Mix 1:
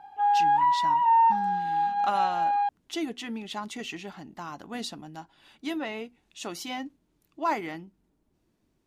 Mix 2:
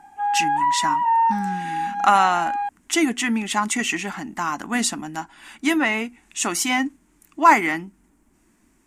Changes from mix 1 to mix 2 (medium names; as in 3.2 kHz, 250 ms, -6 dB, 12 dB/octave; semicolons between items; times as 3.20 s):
speech +12.0 dB; master: add ten-band graphic EQ 125 Hz -10 dB, 250 Hz +5 dB, 500 Hz -9 dB, 1 kHz +3 dB, 2 kHz +7 dB, 4 kHz -9 dB, 8 kHz +12 dB